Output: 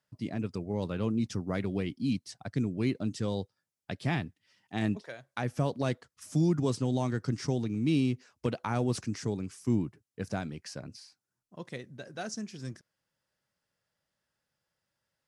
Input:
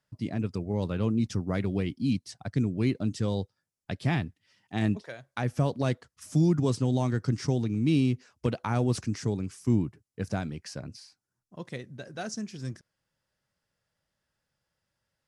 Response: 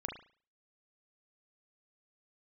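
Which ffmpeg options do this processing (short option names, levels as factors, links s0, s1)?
-af "lowshelf=f=82:g=-10.5,volume=0.841"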